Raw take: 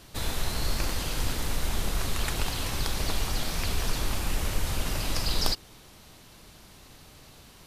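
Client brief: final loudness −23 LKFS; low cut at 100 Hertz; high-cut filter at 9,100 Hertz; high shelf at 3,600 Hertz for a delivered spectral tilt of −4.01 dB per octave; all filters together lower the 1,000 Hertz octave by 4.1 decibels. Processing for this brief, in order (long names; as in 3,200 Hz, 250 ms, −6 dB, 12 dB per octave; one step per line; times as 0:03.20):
high-pass filter 100 Hz
low-pass filter 9,100 Hz
parametric band 1,000 Hz −4.5 dB
high-shelf EQ 3,600 Hz −8.5 dB
level +13 dB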